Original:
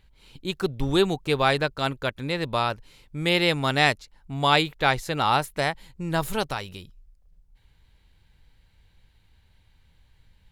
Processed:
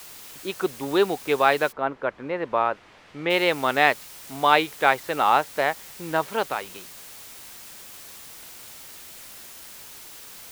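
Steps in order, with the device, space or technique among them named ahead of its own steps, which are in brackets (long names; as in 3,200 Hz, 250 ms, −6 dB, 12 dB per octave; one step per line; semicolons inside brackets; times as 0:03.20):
wax cylinder (band-pass filter 350–2,400 Hz; tape wow and flutter; white noise bed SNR 17 dB)
0:01.71–0:03.29: low-pass filter 1,300 Hz → 2,800 Hz 12 dB per octave
level +3.5 dB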